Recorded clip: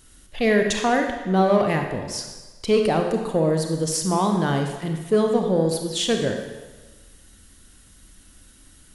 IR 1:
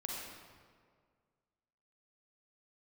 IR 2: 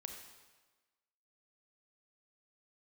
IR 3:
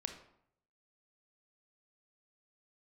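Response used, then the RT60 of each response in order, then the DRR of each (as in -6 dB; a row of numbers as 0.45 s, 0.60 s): 2; 1.9 s, 1.3 s, 0.70 s; -3.0 dB, 3.5 dB, 5.5 dB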